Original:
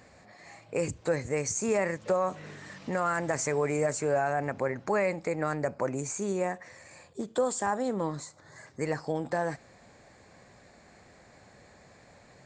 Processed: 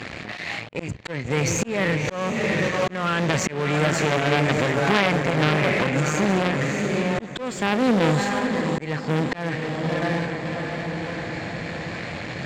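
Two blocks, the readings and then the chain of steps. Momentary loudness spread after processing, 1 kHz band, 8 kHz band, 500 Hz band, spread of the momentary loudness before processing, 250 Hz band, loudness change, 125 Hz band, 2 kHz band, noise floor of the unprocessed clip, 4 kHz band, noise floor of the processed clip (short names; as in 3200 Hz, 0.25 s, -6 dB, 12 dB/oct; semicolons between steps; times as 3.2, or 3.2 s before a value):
11 LU, +7.5 dB, +4.0 dB, +5.5 dB, 14 LU, +11.5 dB, +7.0 dB, +14.0 dB, +12.5 dB, -57 dBFS, +19.0 dB, -36 dBFS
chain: half-wave gain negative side -7 dB; tone controls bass +12 dB, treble -15 dB; on a send: diffused feedback echo 0.673 s, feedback 45%, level -8.5 dB; on the sum: auto swell 0.518 s; sample leveller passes 2; soft clip -19.5 dBFS, distortion -14 dB; weighting filter D; reverse; upward compressor, threshold -31 dBFS; reverse; gain +8 dB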